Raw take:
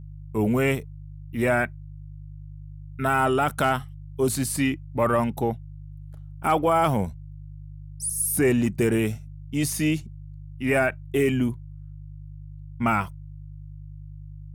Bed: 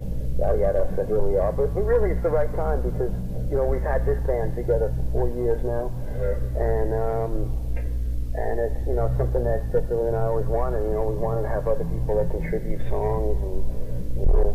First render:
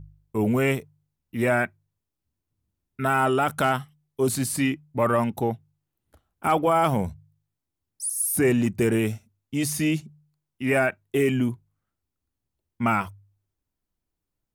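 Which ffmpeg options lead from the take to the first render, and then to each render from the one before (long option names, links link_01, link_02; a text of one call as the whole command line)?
ffmpeg -i in.wav -af "bandreject=frequency=50:width_type=h:width=4,bandreject=frequency=100:width_type=h:width=4,bandreject=frequency=150:width_type=h:width=4" out.wav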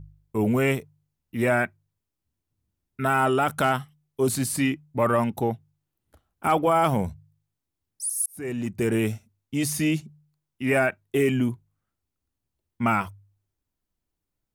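ffmpeg -i in.wav -filter_complex "[0:a]asplit=2[link_01][link_02];[link_01]atrim=end=8.26,asetpts=PTS-STARTPTS,afade=type=out:start_time=8.256:duration=0.004:curve=hsin[link_03];[link_02]atrim=start=8.26,asetpts=PTS-STARTPTS,afade=type=in:duration=0.78[link_04];[link_03][link_04]concat=n=2:v=0:a=1" out.wav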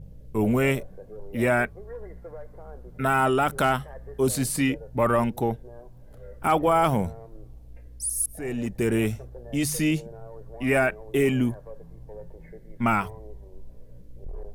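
ffmpeg -i in.wav -i bed.wav -filter_complex "[1:a]volume=-19dB[link_01];[0:a][link_01]amix=inputs=2:normalize=0" out.wav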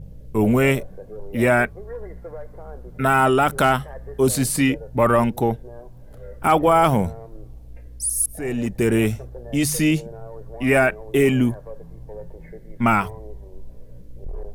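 ffmpeg -i in.wav -af "volume=5dB" out.wav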